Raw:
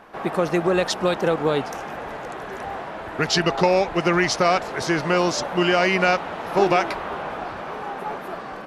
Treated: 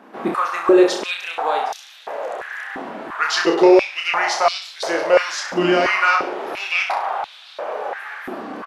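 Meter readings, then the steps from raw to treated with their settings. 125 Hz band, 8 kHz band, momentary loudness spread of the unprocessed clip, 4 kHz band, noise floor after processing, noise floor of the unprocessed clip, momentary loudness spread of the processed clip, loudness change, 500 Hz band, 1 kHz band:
-10.5 dB, 0.0 dB, 13 LU, +1.5 dB, -43 dBFS, -34 dBFS, 16 LU, +3.0 dB, +3.0 dB, +2.5 dB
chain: reverse bouncing-ball echo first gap 30 ms, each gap 1.1×, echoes 5; step-sequenced high-pass 2.9 Hz 250–3700 Hz; trim -2.5 dB

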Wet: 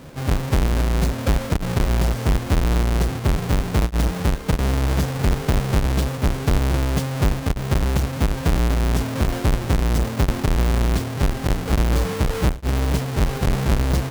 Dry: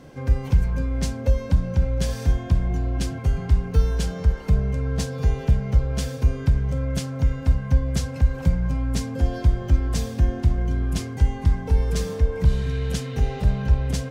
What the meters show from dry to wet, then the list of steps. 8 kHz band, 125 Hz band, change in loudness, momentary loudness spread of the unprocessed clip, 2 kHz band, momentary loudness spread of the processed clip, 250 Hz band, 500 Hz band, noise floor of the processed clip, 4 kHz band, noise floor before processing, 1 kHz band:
+4.5 dB, +1.0 dB, +2.0 dB, 4 LU, +8.0 dB, 3 LU, +5.0 dB, +5.0 dB, -29 dBFS, +6.5 dB, -33 dBFS, +9.5 dB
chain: square wave that keeps the level; peak limiter -13.5 dBFS, peak gain reduction 39.5 dB

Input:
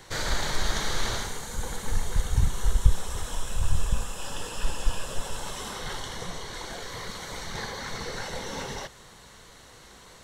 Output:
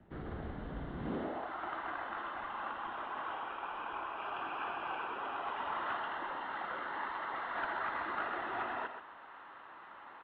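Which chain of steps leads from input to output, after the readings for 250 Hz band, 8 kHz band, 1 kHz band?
-5.0 dB, under -40 dB, +1.5 dB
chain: band-pass sweep 220 Hz -> 1.3 kHz, 0.92–1.52 s; peaking EQ 97 Hz -6 dB 2 oct; one-sided clip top -39 dBFS; delay 127 ms -8 dB; mistuned SSB -160 Hz 210–3300 Hz; trim +6 dB

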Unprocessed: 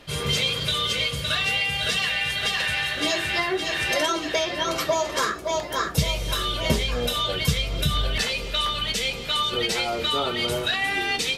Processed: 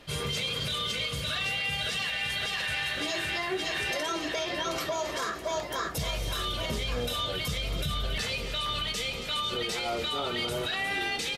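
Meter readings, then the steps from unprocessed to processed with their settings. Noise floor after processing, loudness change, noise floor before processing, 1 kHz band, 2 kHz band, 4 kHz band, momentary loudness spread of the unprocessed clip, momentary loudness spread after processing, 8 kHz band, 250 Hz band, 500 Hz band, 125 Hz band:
-36 dBFS, -6.5 dB, -32 dBFS, -6.5 dB, -6.0 dB, -6.5 dB, 3 LU, 3 LU, -7.0 dB, -6.5 dB, -6.5 dB, -7.0 dB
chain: peak limiter -19 dBFS, peak gain reduction 10.5 dB; frequency-shifting echo 275 ms, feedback 57%, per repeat +35 Hz, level -14 dB; trim -3.5 dB

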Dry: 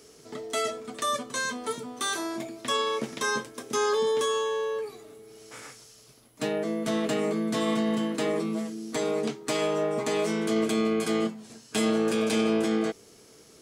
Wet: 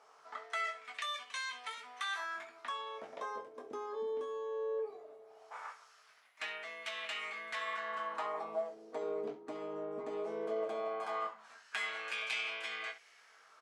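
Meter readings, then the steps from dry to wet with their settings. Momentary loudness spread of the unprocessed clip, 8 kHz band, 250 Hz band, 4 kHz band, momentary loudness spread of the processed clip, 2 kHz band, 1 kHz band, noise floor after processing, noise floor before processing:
10 LU, -20.0 dB, -25.5 dB, -10.0 dB, 10 LU, -5.5 dB, -8.0 dB, -63 dBFS, -54 dBFS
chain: resonant low shelf 510 Hz -11 dB, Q 1.5; on a send: early reflections 20 ms -7 dB, 66 ms -14.5 dB; on the sum: compression 2:1, threshold -34 dBFS, peak gain reduction 7 dB; LFO band-pass sine 0.18 Hz 320–2500 Hz; time-frequency box 2.25–3.13 s, 440–1200 Hz -7 dB; trim +4 dB

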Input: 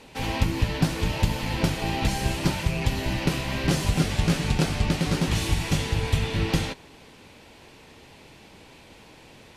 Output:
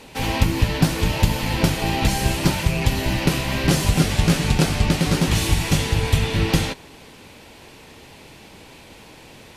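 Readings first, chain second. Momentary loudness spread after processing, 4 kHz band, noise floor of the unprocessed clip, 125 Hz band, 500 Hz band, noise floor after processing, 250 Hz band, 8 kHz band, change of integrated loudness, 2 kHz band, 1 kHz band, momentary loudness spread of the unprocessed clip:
3 LU, +5.5 dB, -50 dBFS, +5.0 dB, +5.0 dB, -45 dBFS, +5.0 dB, +7.0 dB, +5.0 dB, +5.0 dB, +5.0 dB, 3 LU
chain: treble shelf 11 kHz +8 dB; trim +5 dB

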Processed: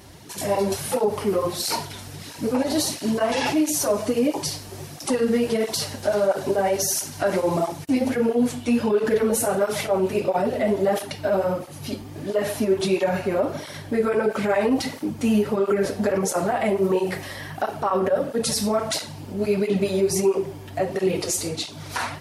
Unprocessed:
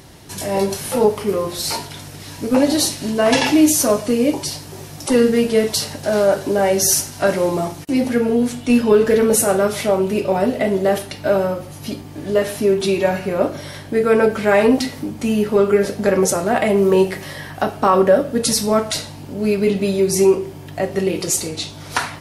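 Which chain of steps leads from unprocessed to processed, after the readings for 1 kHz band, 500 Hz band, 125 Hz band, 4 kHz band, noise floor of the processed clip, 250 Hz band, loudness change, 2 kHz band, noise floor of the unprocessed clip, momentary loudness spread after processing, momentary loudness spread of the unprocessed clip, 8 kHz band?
-4.5 dB, -5.5 dB, -4.5 dB, -5.5 dB, -39 dBFS, -5.5 dB, -6.0 dB, -6.0 dB, -36 dBFS, 8 LU, 12 LU, -6.5 dB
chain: dynamic bell 780 Hz, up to +4 dB, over -30 dBFS, Q 0.88; peak limiter -11 dBFS, peak gain reduction 10.5 dB; cancelling through-zero flanger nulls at 1.5 Hz, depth 7.6 ms

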